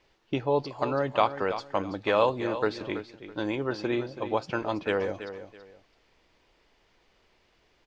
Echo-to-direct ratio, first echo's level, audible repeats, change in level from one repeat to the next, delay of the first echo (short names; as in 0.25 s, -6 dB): -11.0 dB, -11.5 dB, 2, -11.5 dB, 0.329 s